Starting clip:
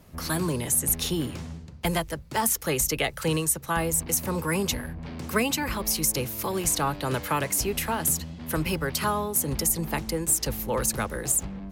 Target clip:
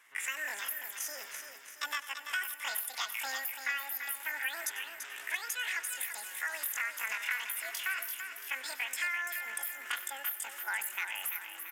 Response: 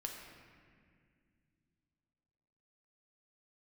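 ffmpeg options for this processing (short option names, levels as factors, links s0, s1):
-filter_complex "[0:a]highpass=f=1100:t=q:w=2.1,equalizer=f=2500:t=o:w=0.53:g=-11.5,acompressor=threshold=0.0355:ratio=10,asetrate=74167,aresample=44100,atempo=0.594604,bandreject=f=4500:w=24,aecho=1:1:338|676|1014|1352|1690|2028:0.398|0.191|0.0917|0.044|0.0211|0.0101,asplit=2[s0][s1];[1:a]atrim=start_sample=2205,adelay=95[s2];[s1][s2]afir=irnorm=-1:irlink=0,volume=0.224[s3];[s0][s3]amix=inputs=2:normalize=0,aresample=32000,aresample=44100,volume=0.841"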